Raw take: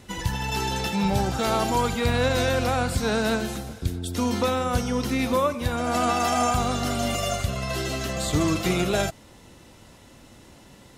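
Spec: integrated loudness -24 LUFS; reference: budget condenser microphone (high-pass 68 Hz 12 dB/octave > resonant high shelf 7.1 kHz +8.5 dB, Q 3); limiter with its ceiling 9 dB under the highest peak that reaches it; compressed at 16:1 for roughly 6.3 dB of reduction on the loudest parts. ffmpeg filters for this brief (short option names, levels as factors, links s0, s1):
-af "acompressor=threshold=0.0631:ratio=16,alimiter=level_in=1.06:limit=0.0631:level=0:latency=1,volume=0.944,highpass=68,highshelf=f=7100:t=q:w=3:g=8.5,volume=2.51"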